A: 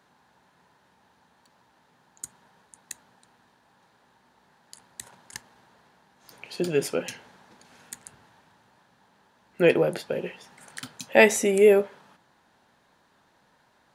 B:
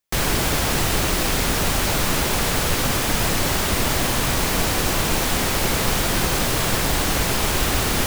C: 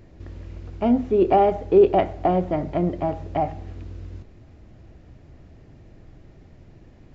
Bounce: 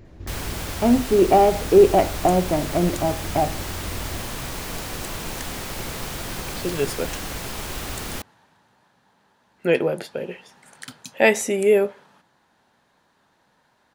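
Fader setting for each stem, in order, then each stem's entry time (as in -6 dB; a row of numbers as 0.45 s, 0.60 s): 0.0 dB, -10.5 dB, +2.0 dB; 0.05 s, 0.15 s, 0.00 s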